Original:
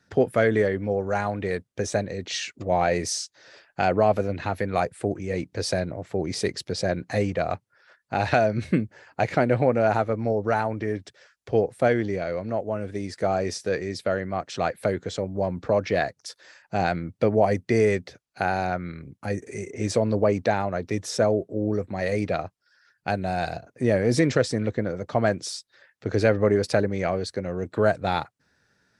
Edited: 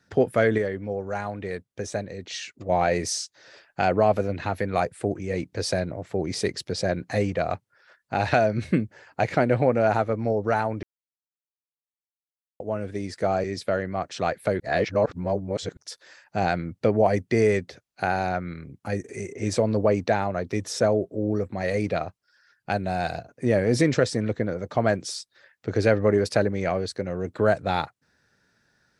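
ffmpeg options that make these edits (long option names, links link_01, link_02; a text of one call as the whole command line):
ffmpeg -i in.wav -filter_complex "[0:a]asplit=8[link_01][link_02][link_03][link_04][link_05][link_06][link_07][link_08];[link_01]atrim=end=0.582[link_09];[link_02]atrim=start=0.578:end=2.692,asetpts=PTS-STARTPTS,volume=-4.5dB[link_10];[link_03]atrim=start=2.688:end=10.83,asetpts=PTS-STARTPTS,afade=type=out:start_time=8.138:duration=0.004:curve=hsin[link_11];[link_04]atrim=start=10.83:end=12.6,asetpts=PTS-STARTPTS,volume=0[link_12];[link_05]atrim=start=12.6:end=13.442,asetpts=PTS-STARTPTS,afade=type=in:duration=0.004:curve=hsin[link_13];[link_06]atrim=start=13.818:end=14.982[link_14];[link_07]atrim=start=14.978:end=16.152,asetpts=PTS-STARTPTS,areverse[link_15];[link_08]atrim=start=16.148[link_16];[link_09][link_10]acrossfade=duration=0.004:curve1=hsin:curve2=hsin[link_17];[link_11][link_12][link_13]concat=n=3:v=0:a=1[link_18];[link_17][link_18]acrossfade=duration=0.004:curve1=hsin:curve2=hsin[link_19];[link_19][link_14]acrossfade=duration=0.004:curve1=hsin:curve2=hsin[link_20];[link_20][link_15]acrossfade=duration=0.004:curve1=hsin:curve2=hsin[link_21];[link_21][link_16]acrossfade=duration=0.004:curve1=hsin:curve2=hsin" out.wav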